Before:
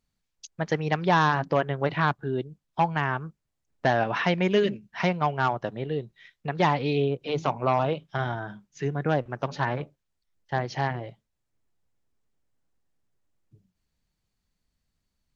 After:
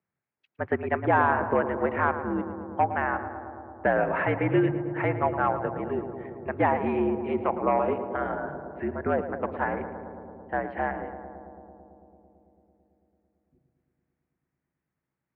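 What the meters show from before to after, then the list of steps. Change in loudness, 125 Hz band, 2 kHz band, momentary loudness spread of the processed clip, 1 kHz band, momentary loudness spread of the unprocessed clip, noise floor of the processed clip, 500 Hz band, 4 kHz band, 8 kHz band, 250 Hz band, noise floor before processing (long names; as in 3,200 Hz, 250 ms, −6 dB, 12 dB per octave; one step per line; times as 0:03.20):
−0.5 dB, −5.5 dB, −0.5 dB, 14 LU, 0.0 dB, 12 LU, below −85 dBFS, +0.5 dB, below −15 dB, can't be measured, +1.0 dB, −80 dBFS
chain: single-sideband voice off tune −61 Hz 200–2,300 Hz
feedback echo with a low-pass in the loop 111 ms, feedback 85%, low-pass 1,700 Hz, level −10 dB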